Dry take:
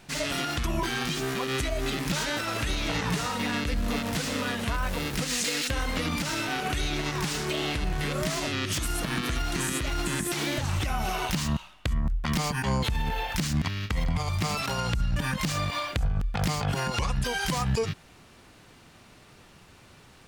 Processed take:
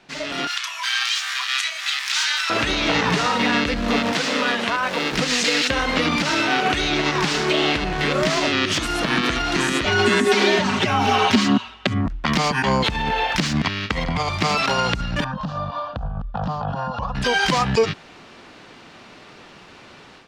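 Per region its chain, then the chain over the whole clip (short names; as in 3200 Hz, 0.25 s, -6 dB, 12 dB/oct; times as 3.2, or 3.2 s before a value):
0.47–2.5 Bessel high-pass 1700 Hz, order 8 + high shelf 4700 Hz +6 dB + doubler 31 ms -10.5 dB
4.12–5.12 HPF 140 Hz + low shelf 320 Hz -5 dB
9.85–12.06 high shelf 8400 Hz -5.5 dB + comb 5.7 ms, depth 84% + frequency shift +56 Hz
15.24–17.15 tape spacing loss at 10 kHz 38 dB + fixed phaser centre 890 Hz, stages 4
whole clip: three-band isolator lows -13 dB, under 190 Hz, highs -21 dB, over 6000 Hz; AGC gain up to 10 dB; gain +1 dB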